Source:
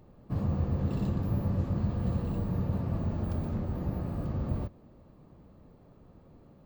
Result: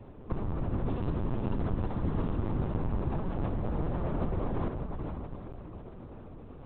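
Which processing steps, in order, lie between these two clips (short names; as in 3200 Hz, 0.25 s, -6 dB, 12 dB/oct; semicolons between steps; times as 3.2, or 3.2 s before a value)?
tracing distortion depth 0.17 ms; HPF 55 Hz 6 dB/oct; in parallel at +1.5 dB: negative-ratio compressor -38 dBFS, ratio -0.5; on the sum: dynamic EQ 930 Hz, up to +4 dB, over -49 dBFS, Q 0.95; on a send: diffused feedback echo 0.455 s, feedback 41%, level -4.5 dB; on the sum: LPC vocoder at 8 kHz pitch kept; gain -3.5 dB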